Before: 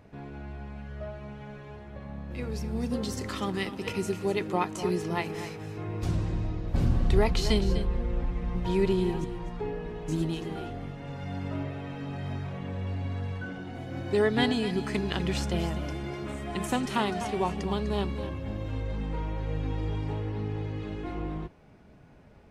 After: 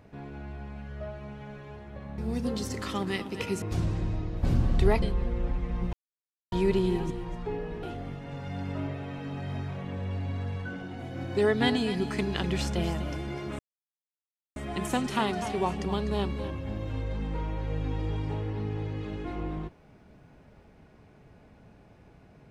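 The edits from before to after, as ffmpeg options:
-filter_complex "[0:a]asplit=7[a][b][c][d][e][f][g];[a]atrim=end=2.182[h];[b]atrim=start=2.648:end=4.092[i];[c]atrim=start=5.928:end=7.332[j];[d]atrim=start=7.748:end=8.66,asetpts=PTS-STARTPTS,afade=t=out:st=0.908:d=0.004:c=hsin,apad=pad_dur=0.59[k];[e]atrim=start=8.66:end=9.972,asetpts=PTS-STARTPTS,afade=t=in:d=0.004:c=hsin[l];[f]atrim=start=10.588:end=16.35,asetpts=PTS-STARTPTS,afade=t=out:st=5.758:d=0.004:c=hsin,apad=pad_dur=0.97[m];[g]atrim=start=16.35,asetpts=PTS-STARTPTS,afade=t=in:d=0.004:c=hsin[n];[h][i]acrossfade=d=0.004:c1=hsin:c2=hsin[o];[o][j]acrossfade=d=0.004:c1=hsin:c2=hsin[p];[k][l]concat=n=2:v=0:a=1[q];[p][q]acrossfade=d=0.004:c1=hsin:c2=hsin[r];[m][n]concat=n=2:v=0:a=1[s];[r][s]acrossfade=d=0.004:c1=hsin:c2=hsin"

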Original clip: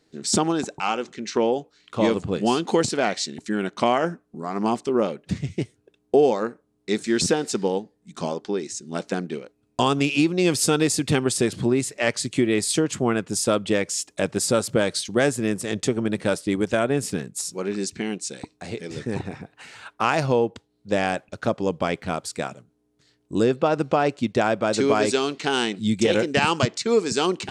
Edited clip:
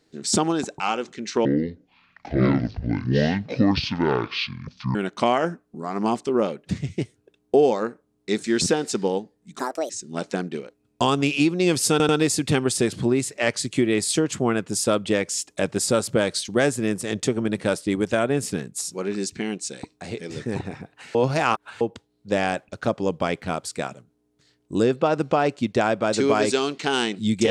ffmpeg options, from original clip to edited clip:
-filter_complex "[0:a]asplit=9[a][b][c][d][e][f][g][h][i];[a]atrim=end=1.454[j];[b]atrim=start=1.45:end=3.55,asetpts=PTS-STARTPTS,asetrate=26460,aresample=44100[k];[c]atrim=start=3.546:end=8.194[l];[d]atrim=start=8.19:end=8.68,asetpts=PTS-STARTPTS,asetrate=70119,aresample=44100[m];[e]atrim=start=8.676:end=10.782[n];[f]atrim=start=10.688:end=10.782[o];[g]atrim=start=10.688:end=19.752[p];[h]atrim=start=19.748:end=20.412,asetpts=PTS-STARTPTS,areverse[q];[i]atrim=start=20.408[r];[j][k]acrossfade=d=0.004:c1=hsin:c2=hsin[s];[s][l]acrossfade=d=0.004:c1=hsin:c2=hsin[t];[t][m]acrossfade=d=0.004:c1=hsin:c2=hsin[u];[u][n]acrossfade=d=0.004:c1=hsin:c2=hsin[v];[v][o]acrossfade=d=0.004:c1=hsin:c2=hsin[w];[w][p]acrossfade=d=0.004:c1=hsin:c2=hsin[x];[x][q]acrossfade=d=0.004:c1=hsin:c2=hsin[y];[y][r]acrossfade=d=0.004:c1=hsin:c2=hsin"

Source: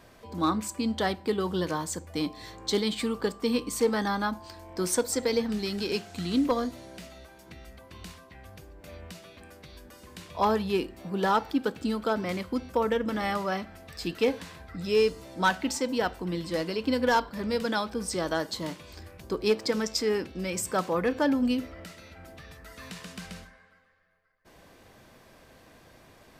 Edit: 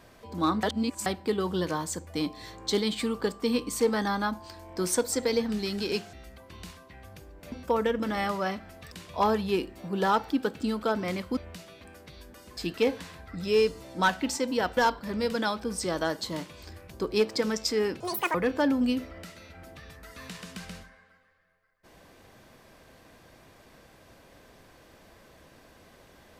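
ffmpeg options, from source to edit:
-filter_complex "[0:a]asplit=11[a][b][c][d][e][f][g][h][i][j][k];[a]atrim=end=0.632[l];[b]atrim=start=0.628:end=1.062,asetpts=PTS-STARTPTS,areverse[m];[c]atrim=start=1.058:end=6.132[n];[d]atrim=start=7.538:end=8.932[o];[e]atrim=start=12.578:end=13.982[p];[f]atrim=start=10.128:end=12.582[q];[g]atrim=start=8.928:end=10.132[r];[h]atrim=start=13.978:end=16.182[s];[i]atrim=start=17.068:end=20.304[t];[j]atrim=start=20.3:end=20.96,asetpts=PTS-STARTPTS,asetrate=84231,aresample=44100[u];[k]atrim=start=20.956[v];[l][m]acrossfade=d=0.004:c1=hsin:c2=hsin[w];[w][n]acrossfade=d=0.004:c1=hsin:c2=hsin[x];[x][o]acrossfade=d=0.004:c1=hsin:c2=hsin[y];[y][p]acrossfade=d=0.004:c1=hsin:c2=hsin[z];[z][q]acrossfade=d=0.004:c1=hsin:c2=hsin[aa];[aa][r]acrossfade=d=0.004:c1=hsin:c2=hsin[ab];[ab][s]acrossfade=d=0.004:c1=hsin:c2=hsin[ac];[ac][t]acrossfade=d=0.004:c1=hsin:c2=hsin[ad];[ad][u]acrossfade=d=0.004:c1=hsin:c2=hsin[ae];[ae][v]acrossfade=d=0.004:c1=hsin:c2=hsin"

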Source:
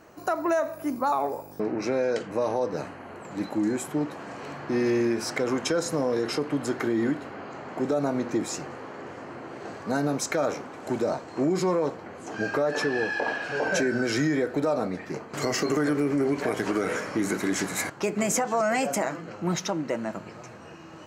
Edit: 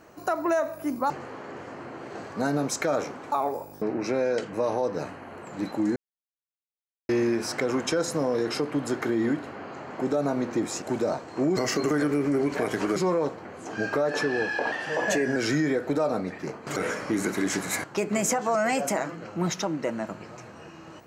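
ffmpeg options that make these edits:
-filter_complex "[0:a]asplit=11[a][b][c][d][e][f][g][h][i][j][k];[a]atrim=end=1.102[l];[b]atrim=start=8.598:end=10.822[m];[c]atrim=start=1.098:end=3.74,asetpts=PTS-STARTPTS,afade=t=out:st=2.638:d=0.004:c=hsin[n];[d]atrim=start=3.74:end=4.87,asetpts=PTS-STARTPTS,volume=0[o];[e]atrim=start=4.87:end=8.602,asetpts=PTS-STARTPTS,afade=t=in:d=0.004:c=hsin[p];[f]atrim=start=10.818:end=11.572[q];[g]atrim=start=15.428:end=16.822[r];[h]atrim=start=11.568:end=13.334[s];[i]atrim=start=13.33:end=14.03,asetpts=PTS-STARTPTS,asetrate=48069,aresample=44100,atrim=end_sample=28321,asetpts=PTS-STARTPTS[t];[j]atrim=start=14.026:end=15.432[u];[k]atrim=start=16.818[v];[l][m]acrossfade=d=0.004:c1=hsin:c2=hsin[w];[n][o][p]concat=n=3:v=0:a=1[x];[w][x]acrossfade=d=0.004:c1=hsin:c2=hsin[y];[y][q]acrossfade=d=0.004:c1=hsin:c2=hsin[z];[z][r]acrossfade=d=0.004:c1=hsin:c2=hsin[aa];[aa][s]acrossfade=d=0.004:c1=hsin:c2=hsin[ab];[ab][t]acrossfade=d=0.004:c1=hsin:c2=hsin[ac];[ac][u]acrossfade=d=0.004:c1=hsin:c2=hsin[ad];[ad][v]acrossfade=d=0.004:c1=hsin:c2=hsin"

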